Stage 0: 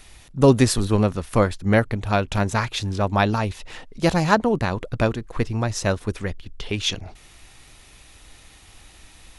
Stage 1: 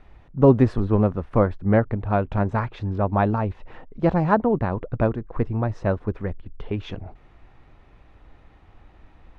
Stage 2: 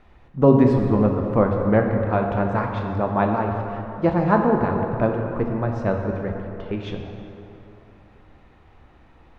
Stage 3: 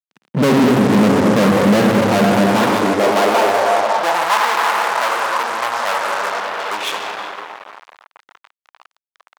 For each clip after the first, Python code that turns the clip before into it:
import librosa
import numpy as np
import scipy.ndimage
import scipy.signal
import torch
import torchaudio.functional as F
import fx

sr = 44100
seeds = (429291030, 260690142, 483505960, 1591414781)

y1 = scipy.signal.sosfilt(scipy.signal.butter(2, 1200.0, 'lowpass', fs=sr, output='sos'), x)
y2 = fx.low_shelf(y1, sr, hz=70.0, db=-8.0)
y2 = fx.rev_plate(y2, sr, seeds[0], rt60_s=3.0, hf_ratio=0.55, predelay_ms=0, drr_db=2.0)
y3 = fx.fuzz(y2, sr, gain_db=36.0, gate_db=-43.0)
y3 = fx.filter_sweep_highpass(y3, sr, from_hz=190.0, to_hz=1000.0, start_s=2.31, end_s=4.38, q=1.7)